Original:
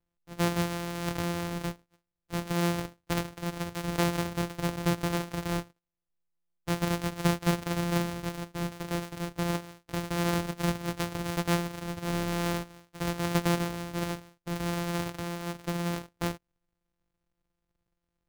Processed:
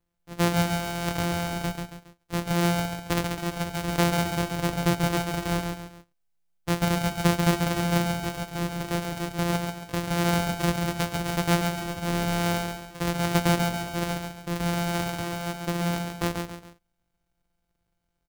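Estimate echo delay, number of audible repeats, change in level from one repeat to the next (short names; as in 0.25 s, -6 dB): 0.138 s, 3, -8.5 dB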